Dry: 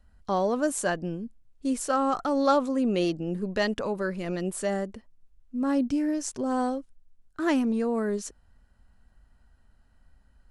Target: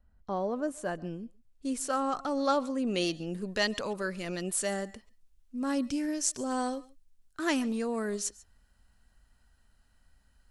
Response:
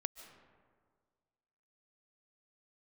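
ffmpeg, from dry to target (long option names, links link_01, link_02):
-filter_complex "[0:a]asetnsamples=nb_out_samples=441:pad=0,asendcmd='0.95 highshelf g 4.5;2.87 highshelf g 12',highshelf=frequency=2000:gain=-9[link_01];[1:a]atrim=start_sample=2205,atrim=end_sample=6174,asetrate=42336,aresample=44100[link_02];[link_01][link_02]afir=irnorm=-1:irlink=0,volume=-4dB"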